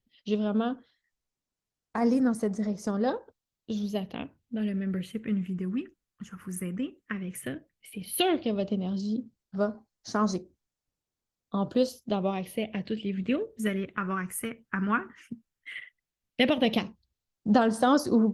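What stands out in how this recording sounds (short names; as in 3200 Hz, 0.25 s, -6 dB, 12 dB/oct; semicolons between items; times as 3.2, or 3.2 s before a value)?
phasing stages 4, 0.12 Hz, lowest notch 650–2900 Hz; Opus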